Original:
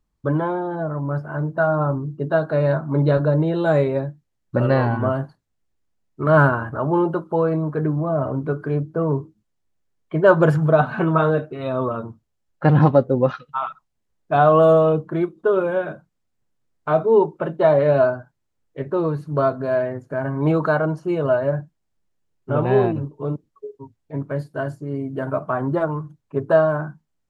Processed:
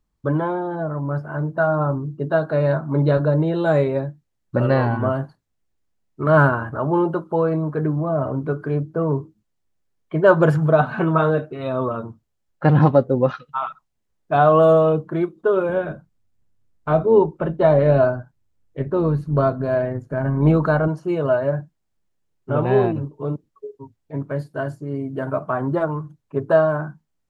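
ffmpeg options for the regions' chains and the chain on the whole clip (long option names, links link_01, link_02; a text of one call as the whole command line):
ffmpeg -i in.wav -filter_complex "[0:a]asettb=1/sr,asplit=3[link_01][link_02][link_03];[link_01]atrim=end=15.694[link_04];[link_02]atrim=start=15.69:end=20.88,asetpts=PTS-STARTPTS,afade=type=in:duration=0.004:curve=qsin,afade=type=out:start_time=5.186:duration=0.004:curve=qsin,tremolo=f=100:d=0.261,lowshelf=frequency=190:gain=10.5[link_05];[link_03]atrim=start=20.876[link_06];[link_04][link_05]acrossfade=duration=0.004:curve1=hsin:curve2=qsin[link_07];[link_07][link_06]acrossfade=duration=0.004:curve1=qsin:curve2=hsin" out.wav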